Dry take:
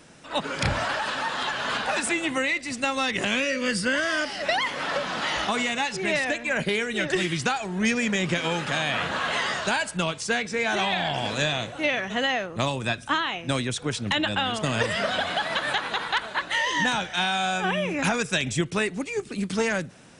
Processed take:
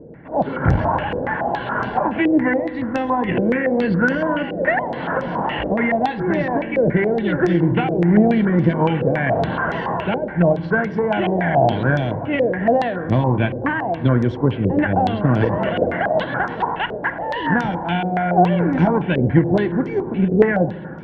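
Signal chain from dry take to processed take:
spectral tilt −3.5 dB per octave
notch filter 580 Hz, Q 16
tube saturation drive 11 dB, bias 0.65
high-frequency loss of the air 490 metres
notch comb filter 1,300 Hz
feedback echo with a high-pass in the loop 1,074 ms, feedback 74%, high-pass 300 Hz, level −20 dB
convolution reverb RT60 2.4 s, pre-delay 3 ms, DRR 11.5 dB
wrong playback speed 25 fps video run at 24 fps
low-pass on a step sequencer 7.1 Hz 490–5,600 Hz
level +8.5 dB

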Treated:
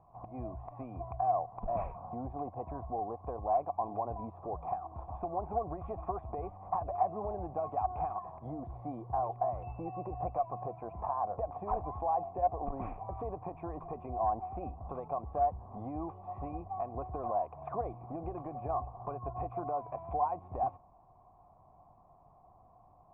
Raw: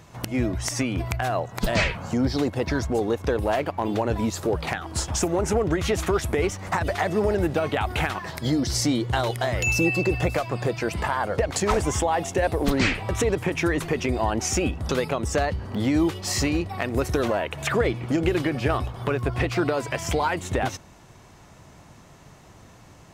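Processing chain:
formant resonators in series a
spectral tilt −3.5 dB per octave
saturating transformer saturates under 150 Hz

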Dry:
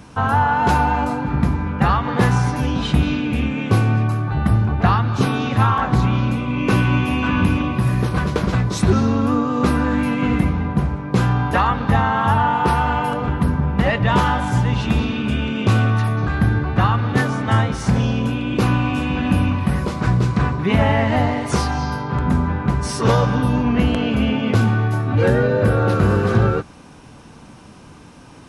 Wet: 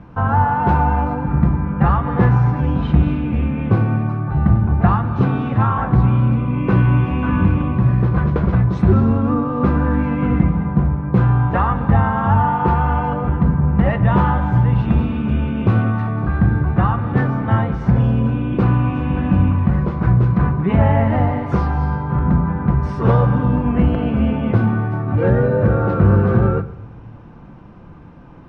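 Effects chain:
low-pass filter 1,600 Hz 12 dB per octave
low-shelf EQ 110 Hz +8 dB
rectangular room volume 2,300 cubic metres, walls furnished, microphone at 0.81 metres
level −1 dB

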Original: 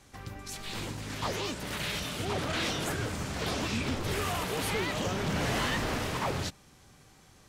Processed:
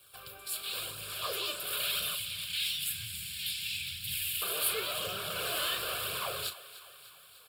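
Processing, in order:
leveller curve on the samples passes 1
0:02.15–0:04.42: Chebyshev band-stop filter 190–1,900 Hz, order 4
flanger 0.98 Hz, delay 0.3 ms, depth 3.2 ms, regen +51%
high-pass filter 50 Hz
RIAA equalisation recording
phaser with its sweep stopped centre 1,300 Hz, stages 8
double-tracking delay 36 ms −10.5 dB
feedback echo with a high-pass in the loop 298 ms, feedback 64%, high-pass 440 Hz, level −16 dB

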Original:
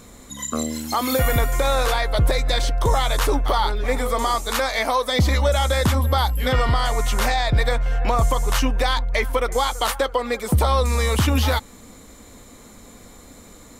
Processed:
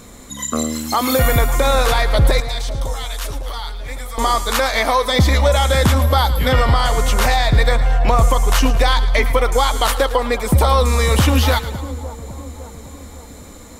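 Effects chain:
0:02.40–0:04.18: guitar amp tone stack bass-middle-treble 5-5-5
echo with a time of its own for lows and highs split 1,000 Hz, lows 555 ms, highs 110 ms, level −13 dB
level +4.5 dB

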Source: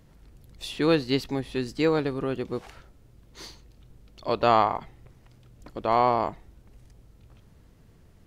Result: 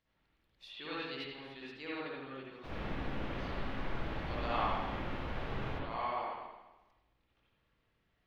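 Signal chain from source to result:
first-order pre-emphasis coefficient 0.97
0:02.63–0:05.78: background noise pink −42 dBFS
high-frequency loss of the air 300 metres
convolution reverb RT60 1.1 s, pre-delay 53 ms, DRR −7.5 dB
level −3 dB

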